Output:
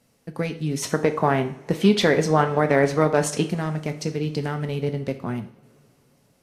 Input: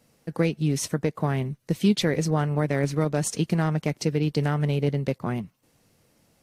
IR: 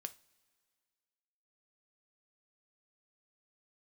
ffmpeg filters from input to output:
-filter_complex "[0:a]asettb=1/sr,asplit=3[a][b][c];[a]atrim=end=0.824[d];[b]atrim=start=0.82:end=3.47,asetpts=PTS-STARTPTS,afade=t=in:d=0.004:c=qsin,afade=t=out:st=2.646:d=0.004:c=qsin,equalizer=f=990:w=0.34:g=11.5[e];[c]atrim=start=3.466[f];[d][e]acrossfade=d=0.004:c1=hsin:c2=qsin[g];[g][f]acrossfade=d=0.004:c1=qsin:c2=hsin[h];[1:a]atrim=start_sample=2205,asetrate=26460,aresample=44100[i];[h][i]afir=irnorm=-1:irlink=0"

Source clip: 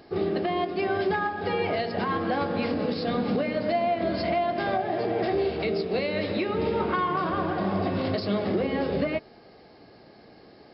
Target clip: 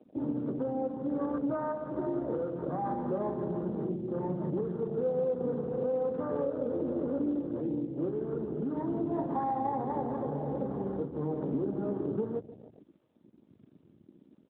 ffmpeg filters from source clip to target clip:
-filter_complex "[0:a]aecho=1:1:108|216|324|432|540:0.178|0.0907|0.0463|0.0236|0.012,asplit=2[a][b];[b]acompressor=threshold=-37dB:ratio=8,volume=2.5dB[c];[a][c]amix=inputs=2:normalize=0,asetrate=32667,aresample=44100,acrossover=split=170[d][e];[d]asoftclip=type=tanh:threshold=-37.5dB[f];[e]lowpass=f=1.1k:w=0.5412,lowpass=f=1.1k:w=1.3066[g];[f][g]amix=inputs=2:normalize=0,aemphasis=mode=production:type=50kf,aeval=exprs='sgn(val(0))*max(abs(val(0))-0.00299,0)':c=same,afwtdn=0.0178,volume=-6.5dB" -ar 8000 -c:a libopencore_amrnb -b:a 12200

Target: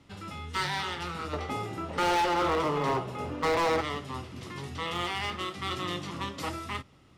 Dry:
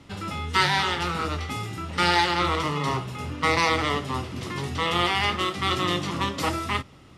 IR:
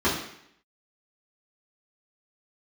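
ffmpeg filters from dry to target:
-filter_complex "[0:a]asettb=1/sr,asplit=3[a][b][c];[a]atrim=end=1.334[d];[b]atrim=start=1.33:end=3.81,asetpts=PTS-STARTPTS,afade=t=in:d=0.004:c=qsin,afade=t=out:st=2.476:d=0.004:c=qsin,equalizer=f=560:w=0.56:g=13.5[e];[c]atrim=start=3.806[f];[d][e]acrossfade=d=0.004:c1=hsin:c2=qsin[g];[g][f]acrossfade=d=0.004:c1=qsin:c2=hsin,asoftclip=type=hard:threshold=-14.5dB,volume=-8.5dB"

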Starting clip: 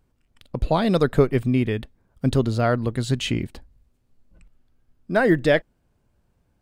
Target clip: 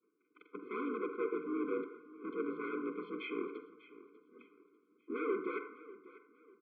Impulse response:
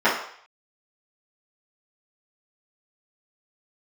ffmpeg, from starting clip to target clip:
-filter_complex "[0:a]agate=range=-33dB:threshold=-57dB:ratio=3:detection=peak,tiltshelf=f=970:g=4.5,areverse,acompressor=threshold=-28dB:ratio=12,areverse,asoftclip=type=hard:threshold=-37.5dB,asplit=4[a][b][c][d];[b]asetrate=33038,aresample=44100,atempo=1.33484,volume=-15dB[e];[c]asetrate=35002,aresample=44100,atempo=1.25992,volume=-6dB[f];[d]asetrate=58866,aresample=44100,atempo=0.749154,volume=-15dB[g];[a][e][f][g]amix=inputs=4:normalize=0,aecho=1:1:594|1188|1782:0.126|0.0415|0.0137,asplit=2[h][i];[1:a]atrim=start_sample=2205,adelay=40[j];[i][j]afir=irnorm=-1:irlink=0,volume=-27.5dB[k];[h][k]amix=inputs=2:normalize=0,highpass=f=260:t=q:w=0.5412,highpass=f=260:t=q:w=1.307,lowpass=f=2.5k:t=q:w=0.5176,lowpass=f=2.5k:t=q:w=0.7071,lowpass=f=2.5k:t=q:w=1.932,afreqshift=58,afftfilt=real='re*eq(mod(floor(b*sr/1024/510),2),0)':imag='im*eq(mod(floor(b*sr/1024/510),2),0)':win_size=1024:overlap=0.75,volume=6.5dB"

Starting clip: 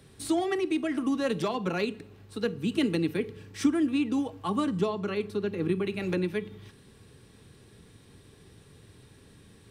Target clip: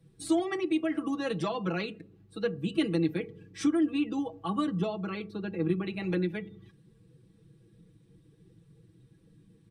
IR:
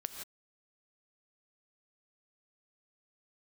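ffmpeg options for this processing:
-af "aecho=1:1:6.1:0.77,afftdn=nr=15:nf=-47,volume=-4dB"

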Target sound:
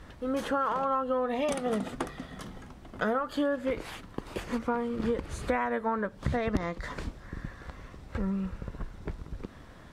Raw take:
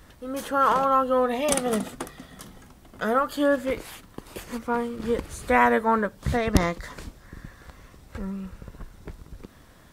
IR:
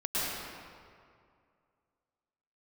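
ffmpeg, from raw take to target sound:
-af "acompressor=threshold=-28dB:ratio=10,aemphasis=mode=reproduction:type=50fm,volume=2.5dB"

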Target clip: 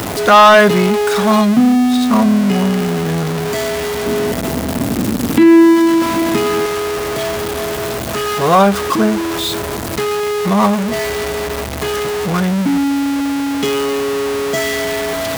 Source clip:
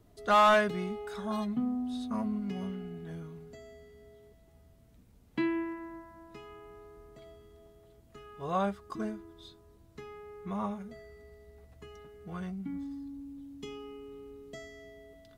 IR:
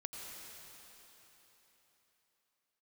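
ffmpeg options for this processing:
-filter_complex "[0:a]aeval=exprs='val(0)+0.5*0.0178*sgn(val(0))':c=same,highpass=78,lowshelf=f=170:g=-5,asoftclip=type=tanh:threshold=-18.5dB,asettb=1/sr,asplit=3[a][b][c];[a]atrim=end=4.064[d];[b]atrim=start=4.06:end=6.66,asetpts=PTS-STARTPTS,afade=t=in:d=0.004:c=qsin,afade=t=out:st=2.596:d=0.004:c=qsin,equalizer=f=240:w=1.3:g=11.5[e];[c]atrim=start=6.656[f];[d][e]acrossfade=d=0.004:c1=hsin:c2=qsin[g];[g][f]acrossfade=d=0.004:c1=qsin:c2=hsin,alimiter=level_in=22dB:limit=-1dB:release=50:level=0:latency=1,volume=-1dB"

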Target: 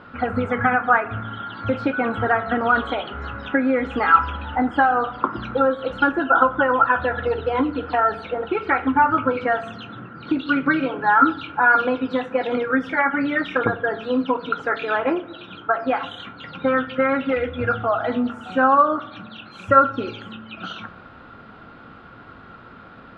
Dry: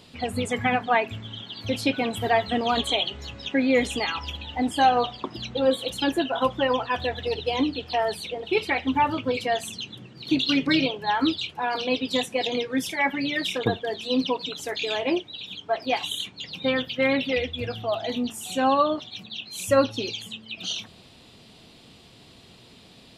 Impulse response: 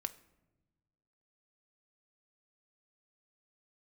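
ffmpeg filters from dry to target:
-filter_complex "[0:a]acompressor=threshold=-25dB:ratio=6,lowpass=f=1.4k:t=q:w=12[a];[1:a]atrim=start_sample=2205[b];[a][b]afir=irnorm=-1:irlink=0,volume=7.5dB"

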